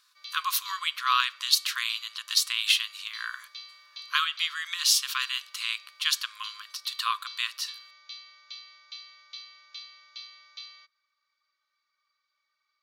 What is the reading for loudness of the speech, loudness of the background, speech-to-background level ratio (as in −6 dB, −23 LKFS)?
−27.0 LKFS, −44.0 LKFS, 17.0 dB